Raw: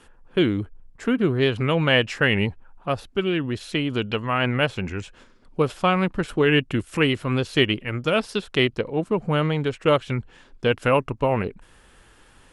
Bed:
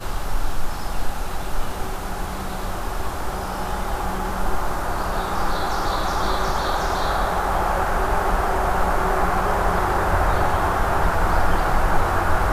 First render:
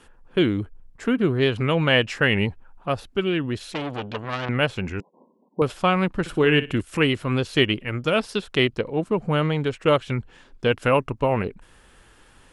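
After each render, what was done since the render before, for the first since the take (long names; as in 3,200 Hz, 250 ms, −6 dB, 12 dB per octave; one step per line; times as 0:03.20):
0:03.73–0:04.49: saturating transformer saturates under 1,800 Hz
0:05.00–0:05.62: linear-phase brick-wall band-pass 160–1,100 Hz
0:06.20–0:06.81: flutter between parallel walls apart 10.1 metres, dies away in 0.25 s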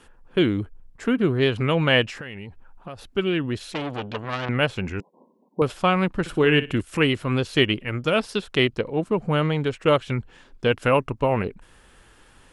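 0:02.09–0:03.08: downward compressor 12 to 1, threshold −32 dBFS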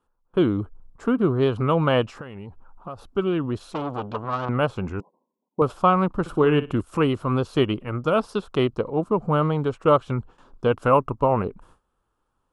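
noise gate with hold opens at −40 dBFS
high shelf with overshoot 1,500 Hz −7 dB, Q 3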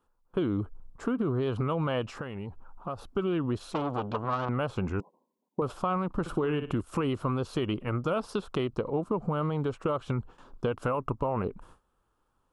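brickwall limiter −16 dBFS, peak gain reduction 10 dB
downward compressor, threshold −25 dBFS, peak gain reduction 6 dB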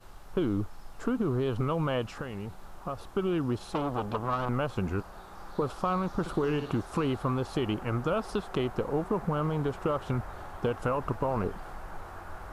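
mix in bed −23 dB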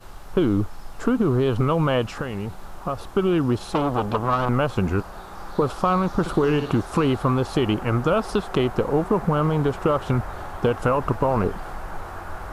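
level +8.5 dB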